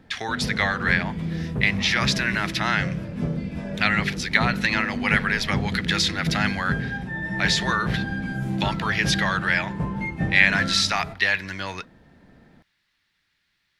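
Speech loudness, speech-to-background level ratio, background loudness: −23.0 LKFS, 5.5 dB, −28.5 LKFS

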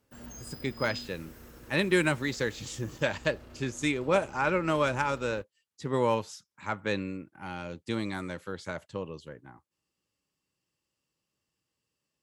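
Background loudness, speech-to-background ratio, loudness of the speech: −48.0 LKFS, 17.0 dB, −31.0 LKFS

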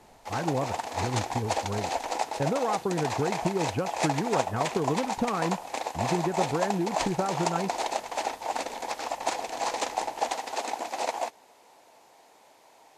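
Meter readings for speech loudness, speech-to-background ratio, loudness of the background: −31.5 LKFS, 0.0 dB, −31.5 LKFS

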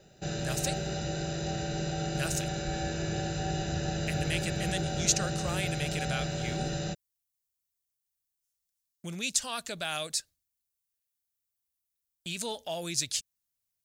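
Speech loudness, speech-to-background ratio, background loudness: −33.5 LKFS, 0.0 dB, −33.5 LKFS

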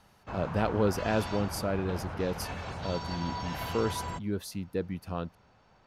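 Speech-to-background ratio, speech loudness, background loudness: 4.5 dB, −33.5 LKFS, −38.0 LKFS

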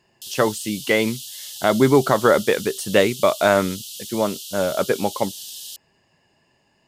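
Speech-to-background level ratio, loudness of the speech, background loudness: 12.5 dB, −20.5 LKFS, −33.0 LKFS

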